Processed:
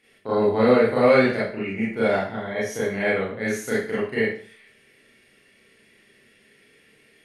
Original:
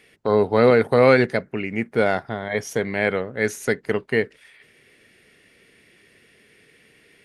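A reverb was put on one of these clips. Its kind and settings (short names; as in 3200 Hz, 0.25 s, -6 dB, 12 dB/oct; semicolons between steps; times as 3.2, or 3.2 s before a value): Schroeder reverb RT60 0.46 s, combs from 28 ms, DRR -9 dB; gain -11 dB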